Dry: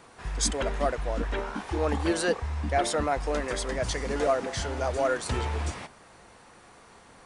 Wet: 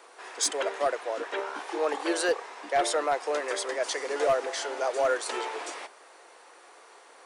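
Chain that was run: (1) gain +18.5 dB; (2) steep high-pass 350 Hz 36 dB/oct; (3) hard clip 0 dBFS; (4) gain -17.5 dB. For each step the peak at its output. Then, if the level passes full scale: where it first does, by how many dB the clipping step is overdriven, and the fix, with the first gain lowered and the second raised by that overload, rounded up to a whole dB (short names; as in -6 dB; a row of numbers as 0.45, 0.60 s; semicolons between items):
+5.5, +6.0, 0.0, -17.5 dBFS; step 1, 6.0 dB; step 1 +12.5 dB, step 4 -11.5 dB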